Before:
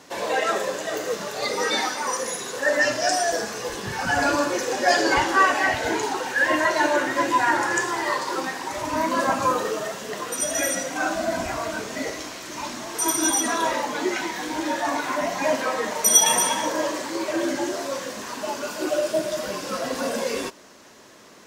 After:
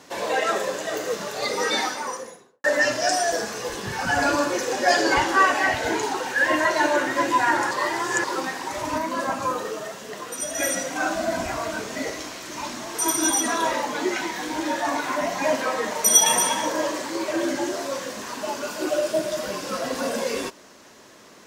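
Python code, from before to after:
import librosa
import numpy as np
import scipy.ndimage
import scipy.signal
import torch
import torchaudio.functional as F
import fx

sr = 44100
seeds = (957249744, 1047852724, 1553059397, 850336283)

y = fx.studio_fade_out(x, sr, start_s=1.8, length_s=0.84)
y = fx.edit(y, sr, fx.reverse_span(start_s=7.71, length_s=0.53),
    fx.clip_gain(start_s=8.98, length_s=1.62, db=-4.0), tone=tone)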